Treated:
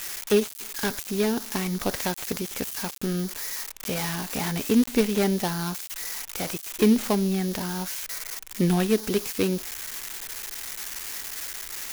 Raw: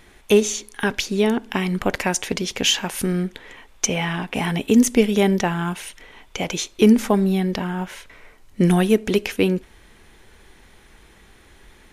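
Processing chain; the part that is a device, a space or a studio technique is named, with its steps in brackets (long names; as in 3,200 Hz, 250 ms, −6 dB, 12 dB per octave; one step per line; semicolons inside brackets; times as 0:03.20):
budget class-D amplifier (gap after every zero crossing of 0.19 ms; spike at every zero crossing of −11.5 dBFS)
level −5.5 dB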